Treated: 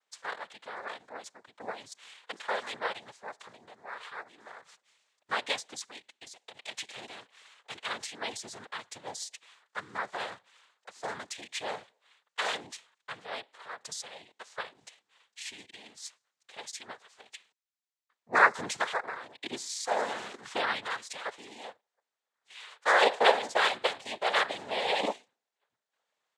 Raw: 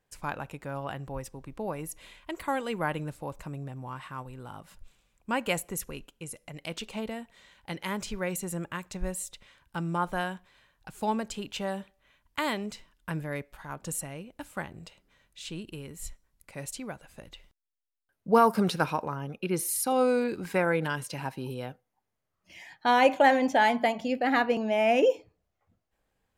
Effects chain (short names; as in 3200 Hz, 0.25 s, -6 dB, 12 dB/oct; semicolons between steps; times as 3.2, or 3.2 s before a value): HPF 810 Hz 12 dB/oct; comb 5.2 ms, depth 57%; noise vocoder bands 6